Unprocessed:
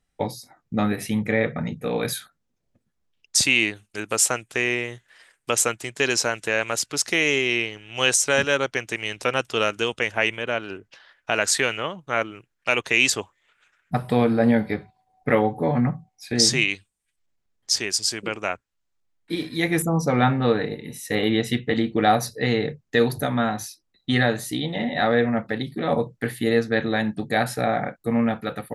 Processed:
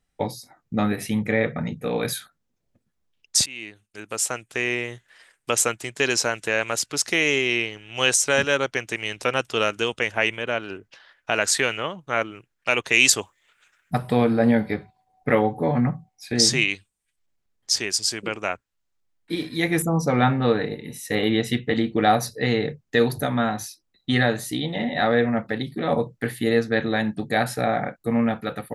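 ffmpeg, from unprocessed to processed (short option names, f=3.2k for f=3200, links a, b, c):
-filter_complex "[0:a]asettb=1/sr,asplit=3[a][b][c];[a]atrim=end=12.924[d];[b]atrim=start=12.92:end=13.98,asetpts=PTS-STARTPTS,afade=t=in:d=0.004:c=qsin,afade=t=out:st=1.056:d=0.004:c=qsin,highshelf=f=4.9k:g=9[e];[c]atrim=start=13.976[f];[d][e]acrossfade=d=0.004:c1=hsin:c2=qsin[g];[g][f]acrossfade=d=0.004:c1=qsin:c2=hsin,asplit=2[h][i];[h]atrim=end=3.46,asetpts=PTS-STARTPTS,afade=t=out:st=3.456:d=0.004:c=hsin:silence=0.0707946[j];[i]atrim=start=3.46,asetpts=PTS-STARTPTS,afade=t=in:d=1.46:silence=0.0707946[k];[j][k]concat=n=2:v=0:a=1"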